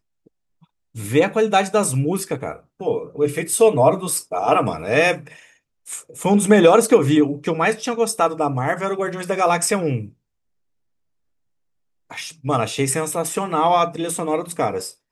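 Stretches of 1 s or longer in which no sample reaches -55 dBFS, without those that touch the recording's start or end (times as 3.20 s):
10.14–12.10 s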